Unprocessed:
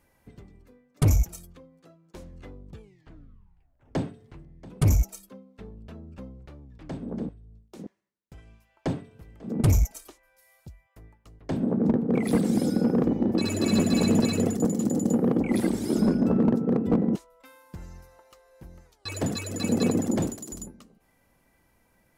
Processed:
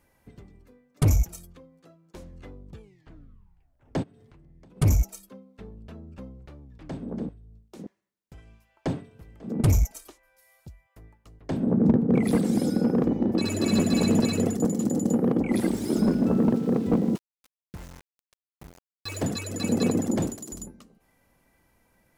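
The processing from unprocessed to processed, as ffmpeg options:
ffmpeg -i in.wav -filter_complex "[0:a]asplit=3[link_01][link_02][link_03];[link_01]afade=type=out:start_time=4.02:duration=0.02[link_04];[link_02]acompressor=threshold=-49dB:ratio=12:attack=3.2:release=140:knee=1:detection=peak,afade=type=in:start_time=4.02:duration=0.02,afade=type=out:start_time=4.76:duration=0.02[link_05];[link_03]afade=type=in:start_time=4.76:duration=0.02[link_06];[link_04][link_05][link_06]amix=inputs=3:normalize=0,asettb=1/sr,asplit=3[link_07][link_08][link_09];[link_07]atrim=end=11.674[link_10];[link_08]atrim=start=11.67:end=12.31,asetpts=PTS-STARTPTS,afade=type=in:duration=0.004:curve=qsin,afade=type=out:start_time=0.636:duration=0.004:curve=qsin,equalizer=frequency=89:width_type=o:width=2.5:gain=7[link_11];[link_09]atrim=start=12.306[link_12];[link_10][link_11]acrossfade=duration=0.004:curve1=hsin:curve2=qsin[link_13];[link_13][link_12]acrossfade=duration=0.004:curve1=qsin:curve2=hsin,asettb=1/sr,asplit=3[link_14][link_15][link_16];[link_14]atrim=end=15.634[link_17];[link_15]atrim=start=15.63:end=19.26,asetpts=PTS-STARTPTS,afade=type=in:duration=0.004:curve=qsin,afade=type=out:start_time=3.626:duration=0.004:curve=qsin,aeval=exprs='val(0)*gte(abs(val(0)),0.00841)':channel_layout=same[link_18];[link_16]atrim=start=19.256[link_19];[link_17][link_18]acrossfade=duration=0.004:curve1=hsin:curve2=qsin[link_20];[link_20][link_19]acrossfade=duration=0.004:curve1=qsin:curve2=hsin" out.wav

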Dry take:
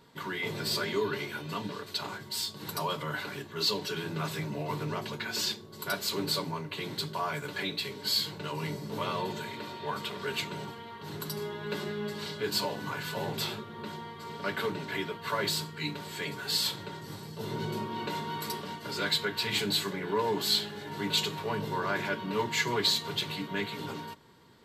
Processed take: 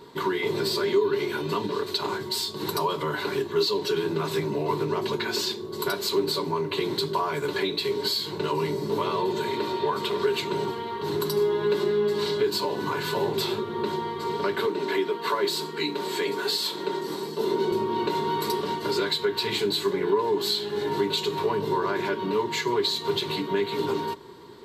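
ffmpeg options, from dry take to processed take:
ffmpeg -i in.wav -filter_complex "[0:a]asettb=1/sr,asplit=3[link_01][link_02][link_03];[link_01]atrim=end=14.674[link_04];[link_02]atrim=start=14.67:end=17.72,asetpts=PTS-STARTPTS,afade=type=in:duration=0.004:curve=qsin,afade=type=out:start_time=3.046:duration=0.004:curve=qsin,highpass=frequency=190:width=0.5412,highpass=frequency=190:width=1.3066[link_05];[link_03]atrim=start=17.716[link_06];[link_04][link_05]acrossfade=duration=0.004:curve1=hsin:curve2=qsin[link_07];[link_07][link_06]acrossfade=duration=0.004:curve1=qsin:curve2=hsin,equalizer=frequency=340:width=2.4:gain=6.5,acompressor=threshold=-34dB:ratio=6,equalizer=frequency=400:width_type=o:width=0.33:gain=10,equalizer=frequency=1000:width_type=o:width=0.33:gain=8,equalizer=frequency=4000:width_type=o:width=0.33:gain=5,volume=6.5dB" out.wav

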